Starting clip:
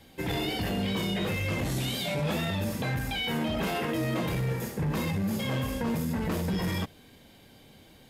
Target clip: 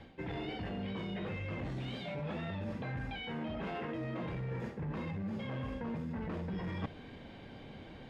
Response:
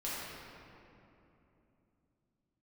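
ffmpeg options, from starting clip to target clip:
-af "areverse,acompressor=threshold=-41dB:ratio=16,areverse,lowpass=2.4k,volume=5.5dB"

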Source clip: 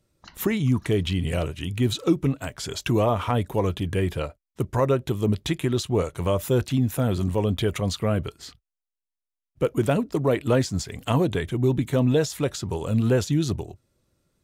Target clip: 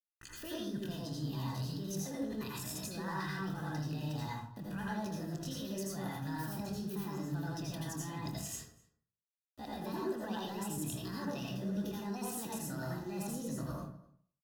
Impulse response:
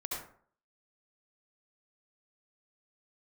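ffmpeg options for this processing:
-filter_complex "[0:a]equalizer=f=380:t=o:w=1.4:g=-12.5,alimiter=limit=-24dB:level=0:latency=1:release=35,areverse,acompressor=threshold=-43dB:ratio=12,areverse,asetrate=70004,aresample=44100,atempo=0.629961,aeval=exprs='val(0)*gte(abs(val(0)),0.00126)':c=same,asuperstop=centerf=2200:order=8:qfactor=5.9,asplit=2[a][b];[b]adelay=26,volume=-12.5dB[c];[a][c]amix=inputs=2:normalize=0,asplit=2[d][e];[e]adelay=250.7,volume=-22dB,highshelf=f=4k:g=-5.64[f];[d][f]amix=inputs=2:normalize=0[g];[1:a]atrim=start_sample=2205,afade=t=out:st=0.44:d=0.01,atrim=end_sample=19845,asetrate=38367,aresample=44100[h];[g][h]afir=irnorm=-1:irlink=0,volume=4.5dB"

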